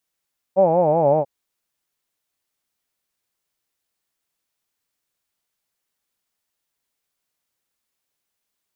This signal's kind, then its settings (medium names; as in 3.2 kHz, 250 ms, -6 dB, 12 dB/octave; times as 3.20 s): formant-synthesis vowel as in hawed, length 0.69 s, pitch 183 Hz, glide -4.5 st, vibrato depth 1.4 st